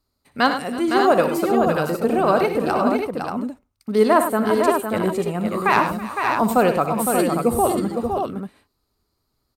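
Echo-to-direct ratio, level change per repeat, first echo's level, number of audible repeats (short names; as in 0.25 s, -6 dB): -1.5 dB, no steady repeat, -11.5 dB, 5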